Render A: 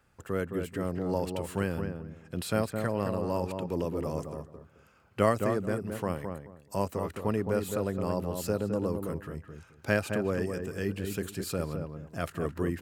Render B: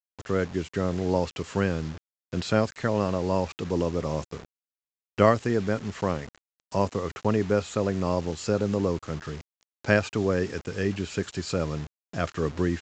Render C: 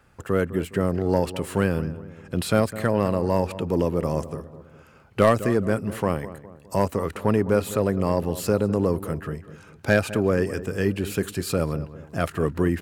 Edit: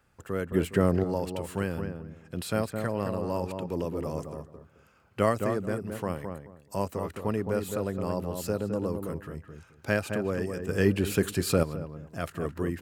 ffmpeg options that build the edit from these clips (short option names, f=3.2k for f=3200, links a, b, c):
-filter_complex "[2:a]asplit=2[a][b];[0:a]asplit=3[c][d][e];[c]atrim=end=0.522[f];[a]atrim=start=0.518:end=1.042[g];[d]atrim=start=1.038:end=10.692[h];[b]atrim=start=10.688:end=11.632[i];[e]atrim=start=11.628[j];[f][g]acrossfade=d=0.004:c1=hsin:c2=hsin[k];[k][h]acrossfade=d=0.004:c1=hsin:c2=hsin[l];[l][i]acrossfade=d=0.004:c1=hsin:c2=hsin[m];[m][j]acrossfade=d=0.004:c1=hsin:c2=hsin"